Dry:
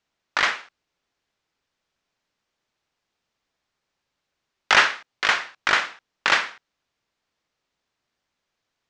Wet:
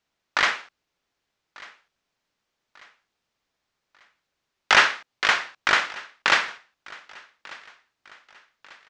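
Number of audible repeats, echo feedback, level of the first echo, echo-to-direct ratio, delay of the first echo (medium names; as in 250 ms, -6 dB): 2, 42%, -22.0 dB, -21.0 dB, 1193 ms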